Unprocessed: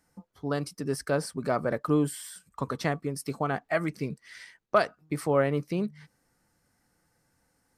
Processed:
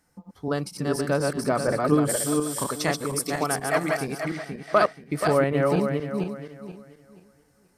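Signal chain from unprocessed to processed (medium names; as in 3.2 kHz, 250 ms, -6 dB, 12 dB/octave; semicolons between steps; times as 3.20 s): backward echo that repeats 240 ms, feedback 51%, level -2 dB; 2.09–4.25 s: tone controls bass -5 dB, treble +9 dB; trim +2.5 dB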